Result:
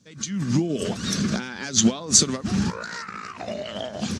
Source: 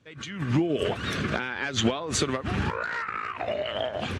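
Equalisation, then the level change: peaking EQ 200 Hz +14.5 dB 0.77 oct; resonant high shelf 3.8 kHz +8.5 dB, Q 1.5; peaking EQ 6.1 kHz +8.5 dB 1.2 oct; -3.5 dB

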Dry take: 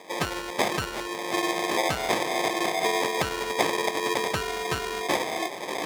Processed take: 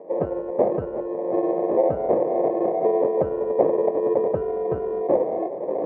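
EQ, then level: high-pass 61 Hz; resonant low-pass 540 Hz, resonance Q 3.8; distance through air 290 m; +2.0 dB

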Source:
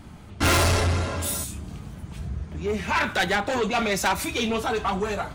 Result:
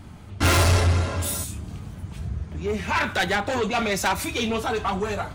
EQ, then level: peaking EQ 96 Hz +8 dB 0.28 oct; 0.0 dB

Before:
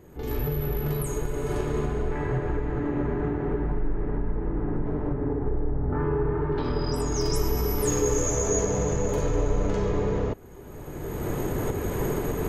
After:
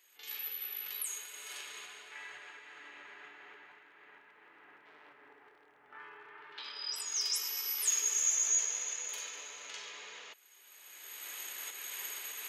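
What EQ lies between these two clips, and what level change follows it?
resonant high-pass 2.9 kHz, resonance Q 1.5; 0.0 dB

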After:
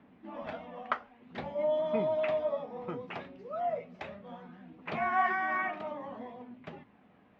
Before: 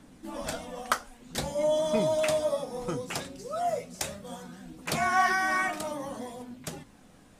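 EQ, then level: cabinet simulation 120–2600 Hz, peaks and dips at 140 Hz -7 dB, 300 Hz -5 dB, 1.5 kHz -4 dB; band-stop 520 Hz, Q 13; -3.0 dB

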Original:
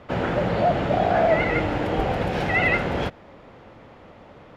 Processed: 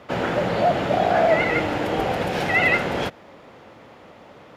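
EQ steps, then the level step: high-pass 170 Hz 6 dB/octave; treble shelf 5.5 kHz +9.5 dB; +1.5 dB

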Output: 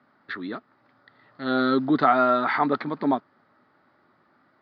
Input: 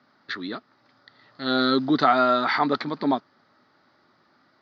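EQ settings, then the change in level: low-pass 2.4 kHz 12 dB/octave; 0.0 dB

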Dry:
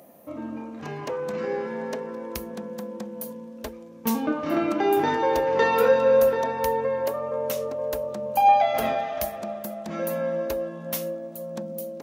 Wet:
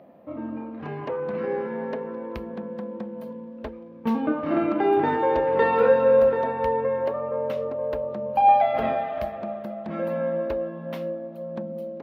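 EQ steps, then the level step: distance through air 400 m; +2.0 dB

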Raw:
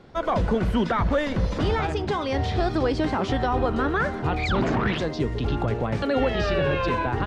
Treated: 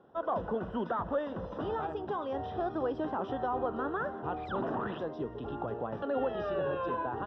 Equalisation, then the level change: boxcar filter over 20 samples; high-pass 720 Hz 6 dB/octave; distance through air 100 m; -2.0 dB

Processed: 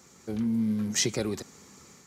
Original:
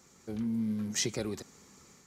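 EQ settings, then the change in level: high-pass 53 Hz; +5.0 dB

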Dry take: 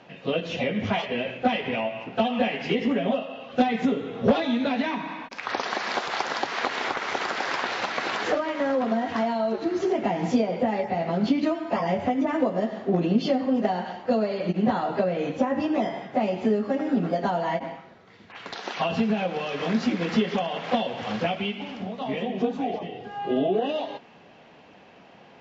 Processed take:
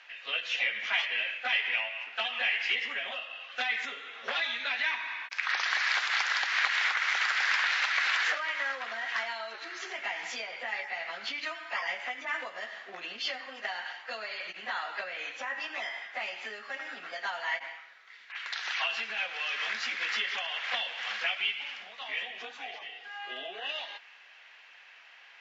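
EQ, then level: resonant high-pass 1.8 kHz, resonance Q 1.8; 0.0 dB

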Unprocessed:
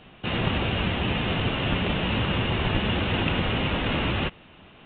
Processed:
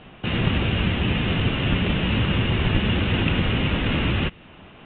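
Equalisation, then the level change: treble shelf 3.7 kHz +7 dB; dynamic bell 780 Hz, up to -7 dB, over -42 dBFS, Q 0.75; distance through air 310 m; +5.5 dB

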